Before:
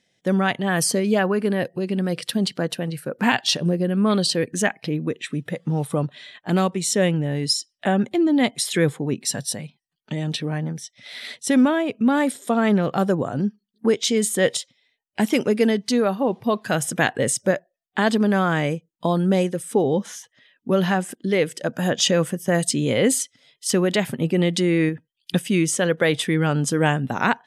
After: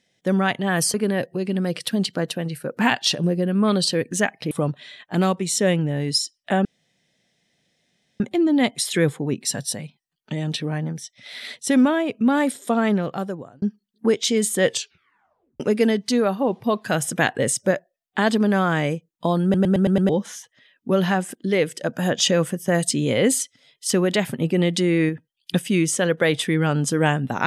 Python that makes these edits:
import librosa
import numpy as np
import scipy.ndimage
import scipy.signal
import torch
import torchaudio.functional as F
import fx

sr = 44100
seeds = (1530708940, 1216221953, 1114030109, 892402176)

y = fx.edit(x, sr, fx.cut(start_s=0.94, length_s=0.42),
    fx.cut(start_s=4.93, length_s=0.93),
    fx.insert_room_tone(at_s=8.0, length_s=1.55),
    fx.fade_out_span(start_s=12.55, length_s=0.87),
    fx.tape_stop(start_s=14.47, length_s=0.93),
    fx.stutter_over(start_s=19.23, slice_s=0.11, count=6), tone=tone)